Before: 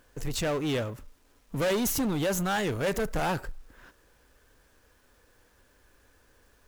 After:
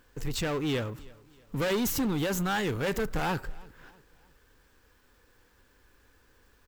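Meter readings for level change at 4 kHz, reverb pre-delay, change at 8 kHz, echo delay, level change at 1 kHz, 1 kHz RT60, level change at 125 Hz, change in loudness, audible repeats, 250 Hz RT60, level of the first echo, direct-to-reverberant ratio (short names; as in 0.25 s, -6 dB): -0.5 dB, none, -3.0 dB, 0.32 s, -1.0 dB, none, 0.0 dB, -1.0 dB, 2, none, -23.5 dB, none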